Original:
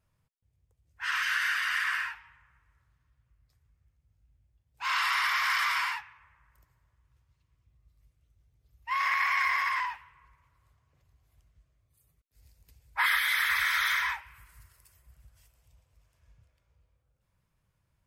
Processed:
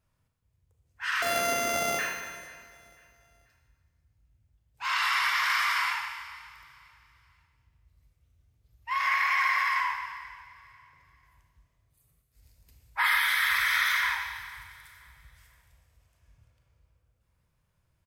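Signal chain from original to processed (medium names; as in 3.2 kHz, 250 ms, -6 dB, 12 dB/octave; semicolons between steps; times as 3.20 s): 1.22–1.99 s: sorted samples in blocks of 64 samples; 9.27–9.78 s: high-pass 400 Hz 12 dB/octave; feedback delay 490 ms, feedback 37%, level -20.5 dB; Schroeder reverb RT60 1.5 s, combs from 25 ms, DRR 3 dB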